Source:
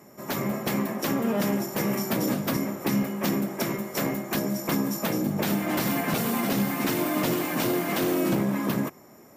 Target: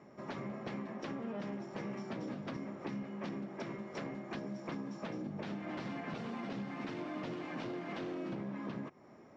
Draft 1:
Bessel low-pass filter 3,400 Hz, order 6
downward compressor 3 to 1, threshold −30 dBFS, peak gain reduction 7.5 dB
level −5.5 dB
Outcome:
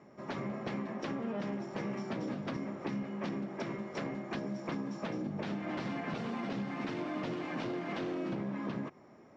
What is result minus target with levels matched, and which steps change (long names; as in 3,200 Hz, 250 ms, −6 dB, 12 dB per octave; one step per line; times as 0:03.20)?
downward compressor: peak gain reduction −4 dB
change: downward compressor 3 to 1, threshold −36 dBFS, peak gain reduction 11.5 dB